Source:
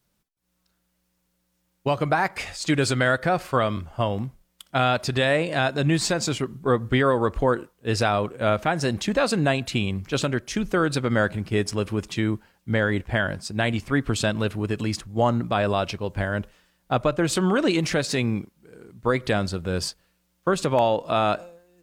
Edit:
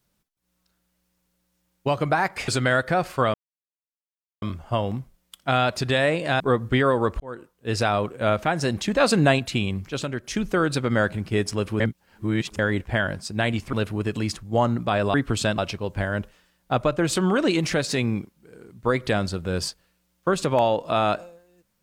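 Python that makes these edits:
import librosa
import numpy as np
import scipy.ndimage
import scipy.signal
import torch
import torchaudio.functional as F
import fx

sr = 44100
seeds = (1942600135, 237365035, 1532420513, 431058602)

y = fx.edit(x, sr, fx.cut(start_s=2.48, length_s=0.35),
    fx.insert_silence(at_s=3.69, length_s=1.08),
    fx.cut(start_s=5.67, length_s=0.93),
    fx.fade_in_span(start_s=7.4, length_s=0.83, curve='qsin'),
    fx.clip_gain(start_s=9.2, length_s=0.39, db=3.5),
    fx.clip_gain(start_s=10.09, length_s=0.35, db=-4.5),
    fx.reverse_span(start_s=12.0, length_s=0.79),
    fx.move(start_s=13.93, length_s=0.44, to_s=15.78), tone=tone)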